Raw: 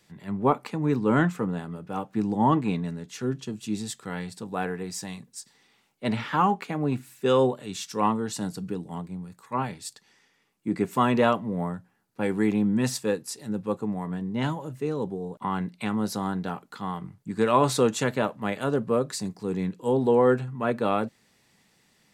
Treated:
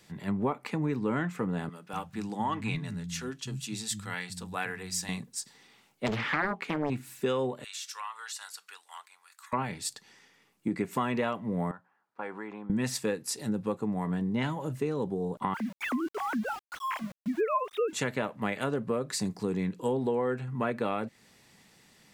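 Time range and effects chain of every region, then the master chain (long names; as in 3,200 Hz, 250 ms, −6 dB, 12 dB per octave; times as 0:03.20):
0:01.69–0:05.09: parametric band 380 Hz −13 dB 2.8 octaves + multiband delay without the direct sound highs, lows 240 ms, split 190 Hz
0:06.06–0:06.90: high-shelf EQ 7,700 Hz −5.5 dB + highs frequency-modulated by the lows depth 0.93 ms
0:07.64–0:09.53: high-pass filter 1,200 Hz 24 dB per octave + downward compressor 3 to 1, threshold −42 dBFS
0:11.71–0:12.70: downward compressor 3 to 1, threshold −28 dBFS + resonant band-pass 1,100 Hz, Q 1.6
0:15.54–0:17.93: three sine waves on the formant tracks + centre clipping without the shift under −45.5 dBFS
whole clip: dynamic equaliser 2,100 Hz, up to +6 dB, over −48 dBFS, Q 2.2; downward compressor 6 to 1, threshold −31 dBFS; level +4 dB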